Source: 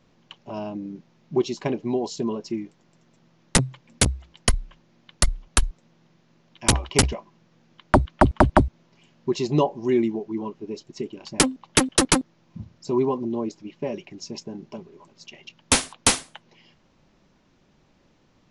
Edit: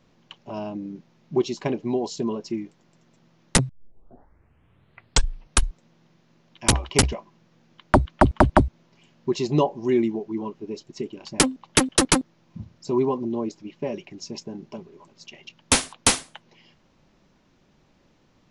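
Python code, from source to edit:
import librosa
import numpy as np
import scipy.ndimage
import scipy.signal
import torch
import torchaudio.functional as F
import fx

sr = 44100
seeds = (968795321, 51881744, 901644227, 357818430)

y = fx.edit(x, sr, fx.tape_start(start_s=3.69, length_s=1.95), tone=tone)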